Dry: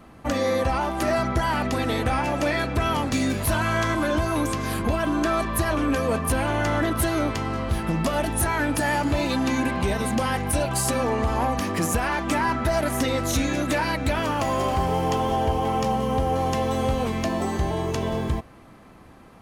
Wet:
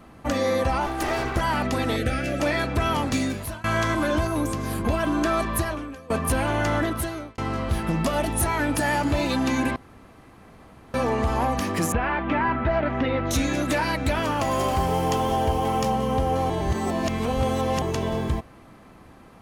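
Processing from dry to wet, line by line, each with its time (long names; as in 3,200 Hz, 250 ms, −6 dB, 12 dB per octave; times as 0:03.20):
0:00.86–0:01.41: lower of the sound and its delayed copy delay 2.6 ms
0:01.96–0:02.40: Butterworth band-reject 950 Hz, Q 1.4
0:03.14–0:03.64: fade out linear, to −24 dB
0:04.27–0:04.85: parametric band 2,600 Hz −6 dB 2.9 octaves
0:05.56–0:06.10: fade out quadratic, to −21.5 dB
0:06.76–0:07.38: fade out
0:08.11–0:08.75: notch filter 1,600 Hz
0:09.76–0:10.94: fill with room tone
0:11.92–0:13.31: low-pass filter 2,900 Hz 24 dB per octave
0:14.51–0:15.90: high-shelf EQ 7,100 Hz +6.5 dB
0:16.50–0:17.82: reverse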